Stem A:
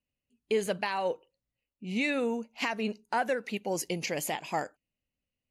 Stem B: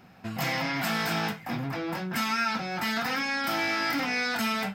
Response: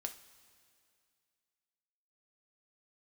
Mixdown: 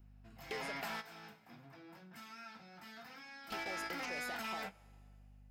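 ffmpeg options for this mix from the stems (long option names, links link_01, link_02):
-filter_complex "[0:a]acompressor=threshold=-37dB:ratio=16,aeval=exprs='val(0)+0.00112*(sin(2*PI*50*n/s)+sin(2*PI*2*50*n/s)/2+sin(2*PI*3*50*n/s)/3+sin(2*PI*4*50*n/s)/4+sin(2*PI*5*50*n/s)/5)':channel_layout=same,volume=-3dB,asplit=3[link_01][link_02][link_03];[link_01]atrim=end=0.96,asetpts=PTS-STARTPTS,afade=type=out:start_time=0.956:duration=0.004:curve=hsin[link_04];[link_02]atrim=start=0.96:end=3.5,asetpts=PTS-STARTPTS,volume=0[link_05];[link_03]atrim=start=3.5,asetpts=PTS-STARTPTS,afade=type=in:duration=0.004:curve=hsin[link_06];[link_04][link_05][link_06]concat=n=3:v=0:a=1,asplit=3[link_07][link_08][link_09];[link_08]volume=-3dB[link_10];[1:a]volume=-8.5dB,asplit=2[link_11][link_12];[link_12]volume=-15.5dB[link_13];[link_09]apad=whole_len=209424[link_14];[link_11][link_14]sidechaingate=range=-28dB:threshold=-50dB:ratio=16:detection=peak[link_15];[2:a]atrim=start_sample=2205[link_16];[link_10][link_13]amix=inputs=2:normalize=0[link_17];[link_17][link_16]afir=irnorm=-1:irlink=0[link_18];[link_07][link_15][link_18]amix=inputs=3:normalize=0,acrossover=split=390|2500[link_19][link_20][link_21];[link_19]acompressor=threshold=-54dB:ratio=4[link_22];[link_20]acompressor=threshold=-40dB:ratio=4[link_23];[link_21]acompressor=threshold=-49dB:ratio=4[link_24];[link_22][link_23][link_24]amix=inputs=3:normalize=0,volume=35.5dB,asoftclip=hard,volume=-35.5dB"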